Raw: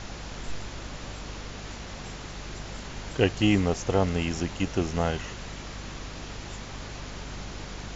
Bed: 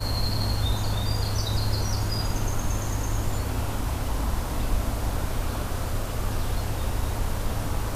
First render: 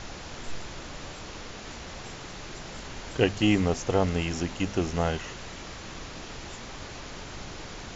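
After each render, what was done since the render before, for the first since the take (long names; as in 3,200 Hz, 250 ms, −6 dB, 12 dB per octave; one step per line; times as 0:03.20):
mains-hum notches 50/100/150/200/250 Hz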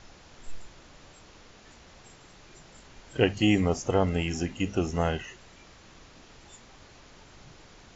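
noise reduction from a noise print 12 dB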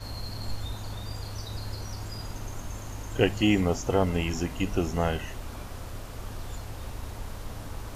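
mix in bed −10.5 dB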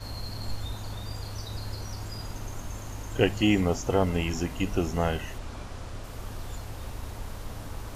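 0:05.38–0:06.04: low-pass filter 8,300 Hz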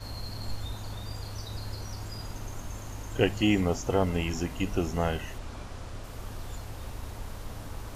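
level −1.5 dB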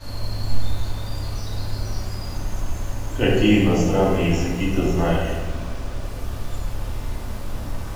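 rectangular room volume 440 cubic metres, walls mixed, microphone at 2.5 metres
feedback echo at a low word length 86 ms, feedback 80%, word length 7 bits, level −14 dB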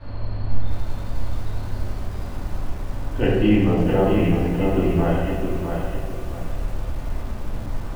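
high-frequency loss of the air 440 metres
feedback echo at a low word length 657 ms, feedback 35%, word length 7 bits, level −5.5 dB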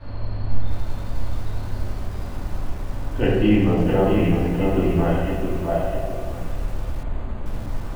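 0:05.67–0:06.32: parametric band 640 Hz +14.5 dB 0.25 octaves
0:07.03–0:07.46: linearly interpolated sample-rate reduction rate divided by 8×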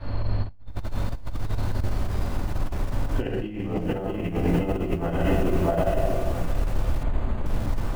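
compressor whose output falls as the input rises −22 dBFS, ratio −0.5
every ending faded ahead of time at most 180 dB per second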